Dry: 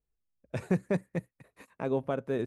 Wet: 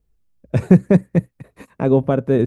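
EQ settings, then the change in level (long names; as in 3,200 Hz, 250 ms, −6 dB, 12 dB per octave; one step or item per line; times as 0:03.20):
low-shelf EQ 430 Hz +11.5 dB
+8.0 dB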